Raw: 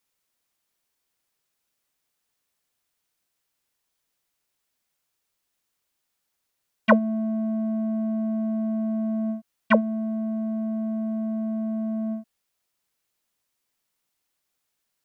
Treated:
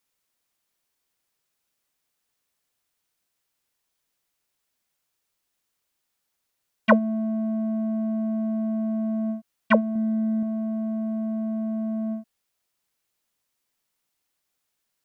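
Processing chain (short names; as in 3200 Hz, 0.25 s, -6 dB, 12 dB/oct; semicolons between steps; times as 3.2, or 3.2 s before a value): 9.95–10.43 comb 4 ms, depth 65%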